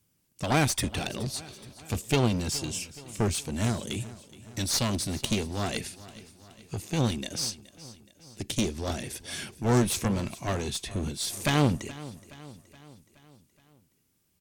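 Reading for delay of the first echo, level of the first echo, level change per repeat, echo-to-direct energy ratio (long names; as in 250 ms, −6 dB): 422 ms, −18.0 dB, −5.0 dB, −16.5 dB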